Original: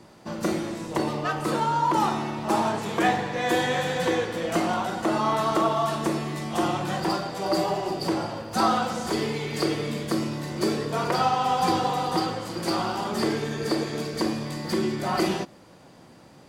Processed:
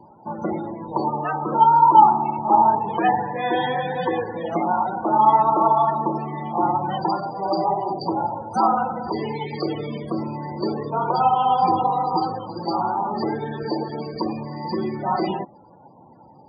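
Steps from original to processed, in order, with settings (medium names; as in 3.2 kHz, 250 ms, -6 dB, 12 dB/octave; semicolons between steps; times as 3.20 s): loudest bins only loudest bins 32; small resonant body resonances 870/3000 Hz, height 16 dB, ringing for 35 ms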